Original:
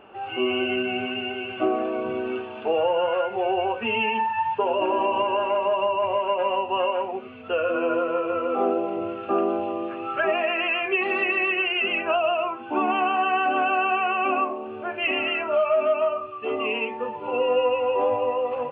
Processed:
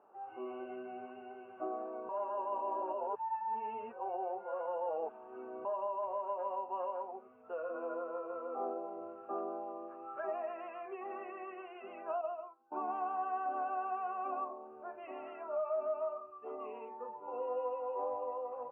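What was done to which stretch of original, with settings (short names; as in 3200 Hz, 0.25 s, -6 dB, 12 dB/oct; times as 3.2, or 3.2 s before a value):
2.09–5.65 reverse
12.21–12.72 upward expander 2.5:1, over -33 dBFS
whole clip: LPF 1000 Hz 24 dB/oct; differentiator; gain +7 dB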